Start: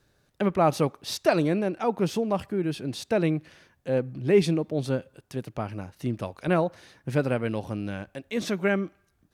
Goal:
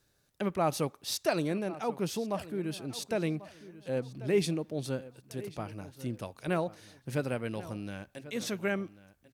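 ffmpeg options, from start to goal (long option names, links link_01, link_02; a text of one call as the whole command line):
ffmpeg -i in.wav -filter_complex "[0:a]highshelf=frequency=4500:gain=10.5,asplit=2[link_01][link_02];[link_02]adelay=1091,lowpass=frequency=4800:poles=1,volume=-16.5dB,asplit=2[link_03][link_04];[link_04]adelay=1091,lowpass=frequency=4800:poles=1,volume=0.31,asplit=2[link_05][link_06];[link_06]adelay=1091,lowpass=frequency=4800:poles=1,volume=0.31[link_07];[link_01][link_03][link_05][link_07]amix=inputs=4:normalize=0,volume=-7.5dB" out.wav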